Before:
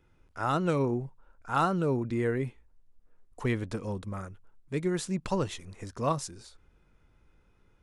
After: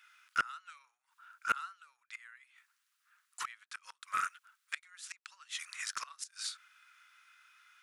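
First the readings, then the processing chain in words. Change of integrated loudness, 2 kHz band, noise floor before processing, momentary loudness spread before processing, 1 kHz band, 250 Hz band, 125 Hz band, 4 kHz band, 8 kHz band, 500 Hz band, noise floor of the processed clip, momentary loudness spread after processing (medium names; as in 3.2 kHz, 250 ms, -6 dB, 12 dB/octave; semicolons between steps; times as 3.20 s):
-9.0 dB, +1.0 dB, -65 dBFS, 15 LU, -6.5 dB, under -30 dB, under -35 dB, +1.0 dB, 0.0 dB, -31.5 dB, -81 dBFS, 20 LU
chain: inverted gate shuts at -24 dBFS, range -27 dB; elliptic high-pass 1.3 kHz, stop band 80 dB; loudspeaker Doppler distortion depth 0.32 ms; trim +14 dB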